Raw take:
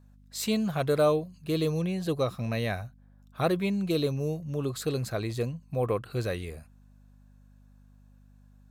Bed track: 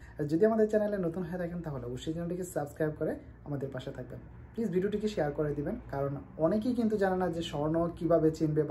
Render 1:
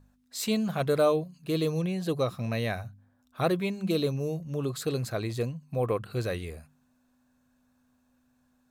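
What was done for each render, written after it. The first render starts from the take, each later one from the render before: de-hum 50 Hz, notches 4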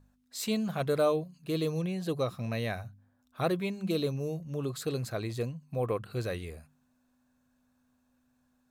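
trim -3 dB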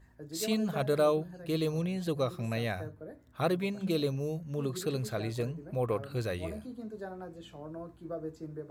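add bed track -13 dB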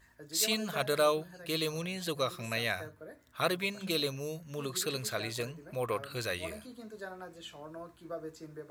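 tilt shelf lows -8 dB, about 700 Hz; band-stop 790 Hz, Q 12

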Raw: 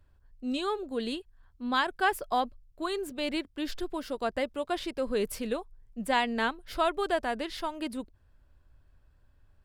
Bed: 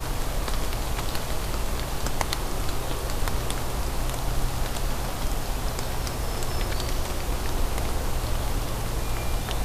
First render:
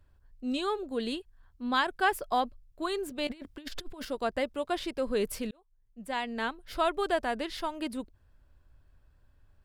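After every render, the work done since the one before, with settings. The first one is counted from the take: 3.27–4.05 s: compressor with a negative ratio -39 dBFS, ratio -0.5; 5.51–6.94 s: fade in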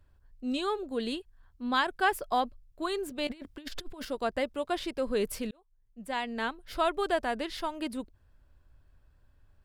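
no audible change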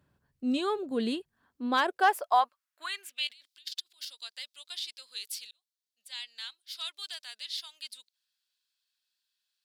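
hard clipper -16.5 dBFS, distortion -29 dB; high-pass sweep 160 Hz -> 4 kHz, 1.20–3.41 s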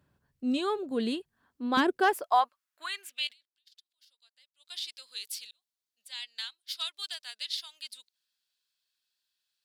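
1.77–2.24 s: resonant low shelf 390 Hz +14 dB, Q 1.5; 3.26–4.77 s: dip -22 dB, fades 0.18 s; 6.22–7.55 s: transient shaper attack +6 dB, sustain -4 dB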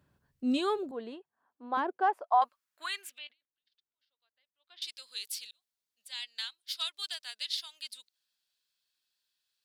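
0.91–2.42 s: band-pass filter 820 Hz, Q 1.7; 3.18–4.82 s: tape spacing loss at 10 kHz 44 dB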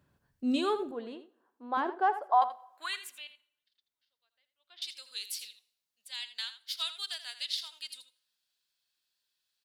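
delay 82 ms -12.5 dB; plate-style reverb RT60 0.86 s, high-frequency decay 0.75×, DRR 18 dB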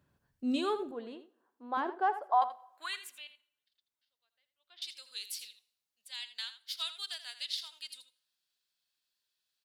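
trim -2.5 dB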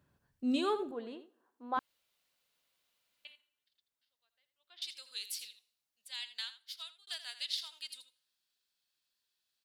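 1.79–3.25 s: room tone; 6.37–7.07 s: fade out

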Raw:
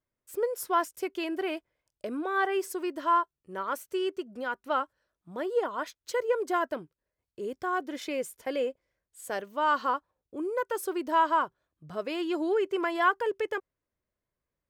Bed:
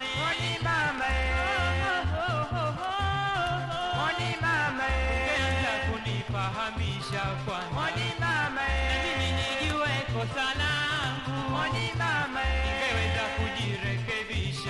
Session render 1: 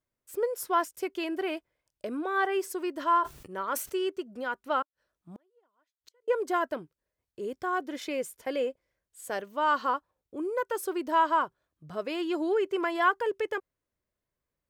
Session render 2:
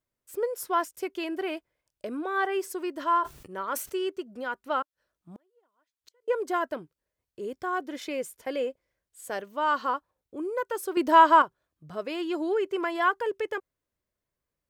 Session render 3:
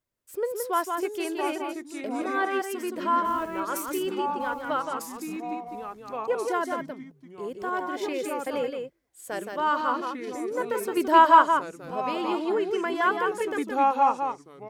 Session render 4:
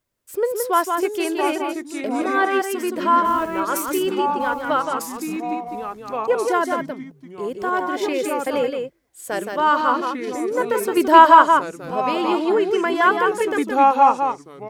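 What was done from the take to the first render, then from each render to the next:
2.96–3.96 s: decay stretcher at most 87 dB/s; 4.82–6.28 s: inverted gate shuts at -37 dBFS, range -40 dB
10.97–11.42 s: gain +7.5 dB
on a send: delay 170 ms -5 dB; on the sum: ever faster or slower copies 536 ms, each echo -3 st, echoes 2, each echo -6 dB
trim +7.5 dB; peak limiter -1 dBFS, peak gain reduction 3 dB

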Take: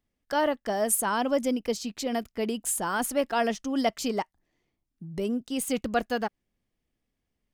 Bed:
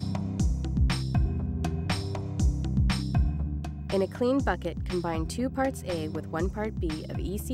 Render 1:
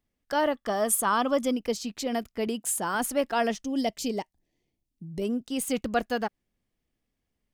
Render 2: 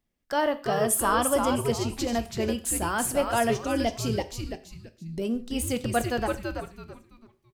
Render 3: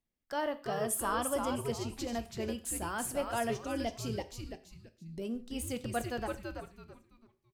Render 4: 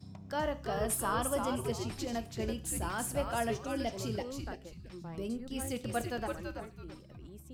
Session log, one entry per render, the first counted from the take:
0.55–1.52 s: small resonant body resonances 1.2/3.4 kHz, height 12 dB, ringing for 25 ms; 2.47–2.95 s: high-pass 100 Hz; 3.64–5.22 s: peaking EQ 1.3 kHz -14 dB 1 oct
frequency-shifting echo 332 ms, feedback 30%, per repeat -150 Hz, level -4.5 dB; gated-style reverb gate 160 ms falling, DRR 10 dB
trim -9 dB
add bed -18 dB

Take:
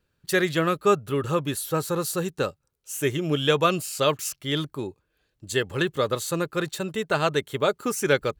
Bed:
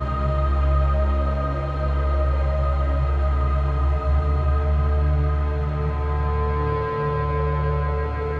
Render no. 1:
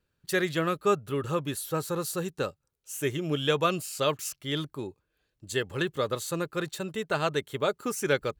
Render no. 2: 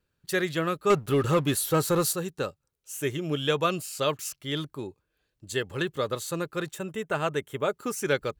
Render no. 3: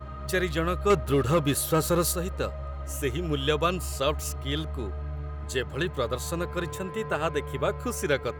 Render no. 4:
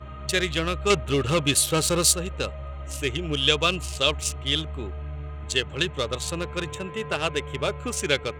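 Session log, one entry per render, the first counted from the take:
trim -4.5 dB
0.90–2.13 s: waveshaping leveller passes 2; 6.70–7.73 s: peaking EQ 4.3 kHz -13.5 dB 0.37 oct
add bed -14.5 dB
local Wiener filter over 9 samples; high-order bell 4.6 kHz +12.5 dB 2.3 oct

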